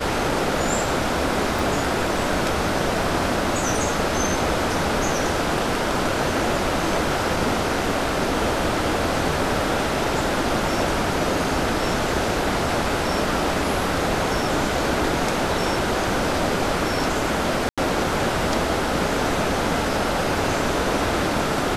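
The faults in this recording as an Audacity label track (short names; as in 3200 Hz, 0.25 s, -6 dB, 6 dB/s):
1.590000	1.590000	pop
17.690000	17.780000	gap 86 ms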